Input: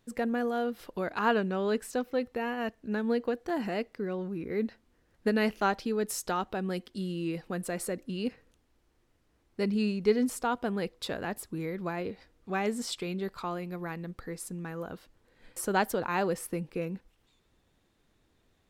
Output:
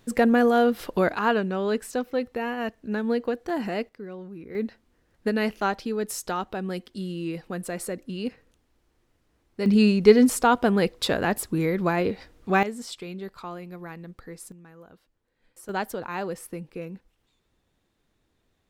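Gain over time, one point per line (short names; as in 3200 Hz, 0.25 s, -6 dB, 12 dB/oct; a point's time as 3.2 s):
+11 dB
from 1.15 s +3.5 dB
from 3.89 s -4.5 dB
from 4.55 s +2 dB
from 9.66 s +10.5 dB
from 12.63 s -2 dB
from 14.52 s -11 dB
from 15.69 s -2 dB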